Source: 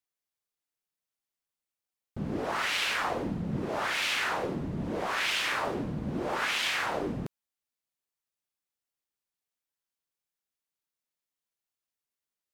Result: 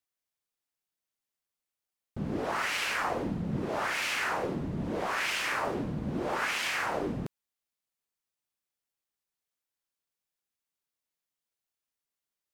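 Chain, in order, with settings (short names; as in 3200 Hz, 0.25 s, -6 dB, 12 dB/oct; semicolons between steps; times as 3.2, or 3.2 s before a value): dynamic EQ 3600 Hz, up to -7 dB, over -47 dBFS, Q 2.3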